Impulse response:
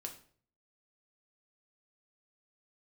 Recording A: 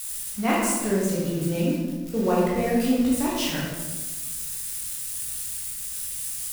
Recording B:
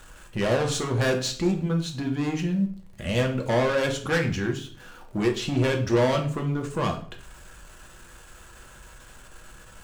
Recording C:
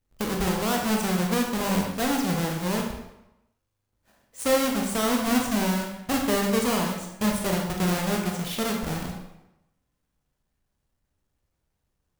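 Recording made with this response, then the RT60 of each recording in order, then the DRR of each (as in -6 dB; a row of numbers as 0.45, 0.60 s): B; 1.3, 0.50, 0.90 s; -7.0, 2.5, 0.5 dB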